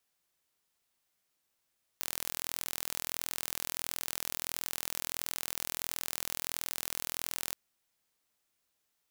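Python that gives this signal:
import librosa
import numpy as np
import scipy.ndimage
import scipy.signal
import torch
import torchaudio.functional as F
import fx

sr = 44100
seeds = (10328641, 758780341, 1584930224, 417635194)

y = 10.0 ** (-8.0 / 20.0) * (np.mod(np.arange(round(5.54 * sr)), round(sr / 41.5)) == 0)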